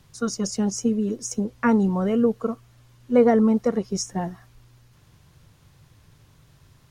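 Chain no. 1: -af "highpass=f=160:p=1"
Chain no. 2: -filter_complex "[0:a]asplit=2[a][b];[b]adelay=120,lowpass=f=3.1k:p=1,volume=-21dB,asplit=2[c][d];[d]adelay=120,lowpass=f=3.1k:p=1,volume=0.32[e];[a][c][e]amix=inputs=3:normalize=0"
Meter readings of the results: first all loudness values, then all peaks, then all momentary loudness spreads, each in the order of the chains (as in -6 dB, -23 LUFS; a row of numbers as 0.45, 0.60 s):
-24.0, -23.0 LUFS; -7.5, -6.5 dBFS; 12, 12 LU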